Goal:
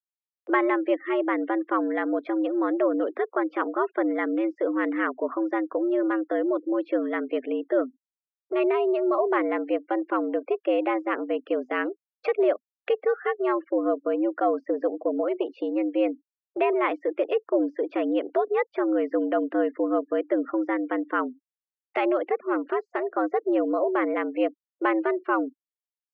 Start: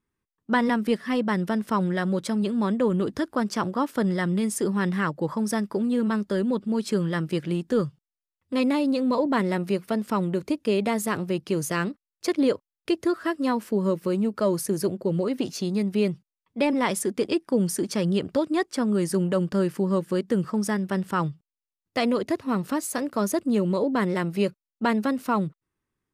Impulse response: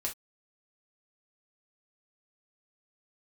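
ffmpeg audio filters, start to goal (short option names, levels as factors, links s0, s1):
-af "afftfilt=real='re*gte(hypot(re,im),0.00891)':imag='im*gte(hypot(re,im),0.00891)':win_size=1024:overlap=0.75,highpass=f=170:t=q:w=0.5412,highpass=f=170:t=q:w=1.307,lowpass=f=2600:t=q:w=0.5176,lowpass=f=2600:t=q:w=0.7071,lowpass=f=2600:t=q:w=1.932,afreqshift=110,acompressor=mode=upward:threshold=0.0501:ratio=2.5"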